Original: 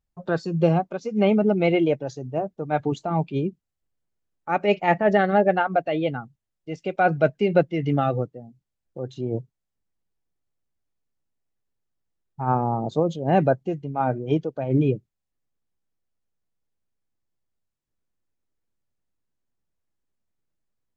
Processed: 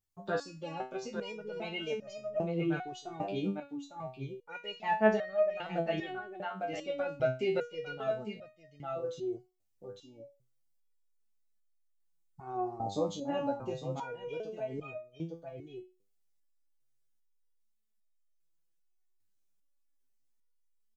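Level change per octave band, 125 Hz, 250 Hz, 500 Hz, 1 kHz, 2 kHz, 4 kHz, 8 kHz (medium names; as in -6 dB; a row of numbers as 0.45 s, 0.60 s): -16.5 dB, -13.5 dB, -10.5 dB, -12.5 dB, -10.5 dB, -5.0 dB, no reading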